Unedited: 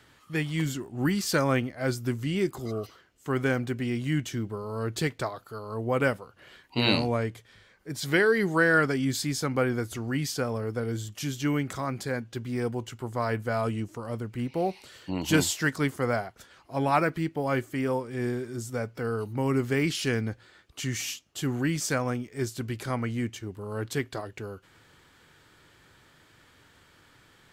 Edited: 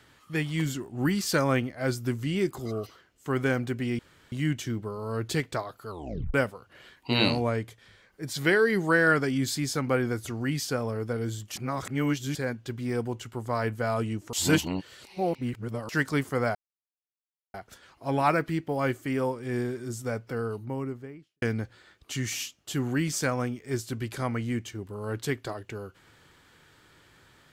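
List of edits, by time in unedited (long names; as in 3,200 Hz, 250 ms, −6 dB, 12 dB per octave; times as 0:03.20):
0:03.99: splice in room tone 0.33 s
0:05.56: tape stop 0.45 s
0:11.23–0:12.02: reverse
0:14.00–0:15.56: reverse
0:16.22: splice in silence 0.99 s
0:18.83–0:20.10: fade out and dull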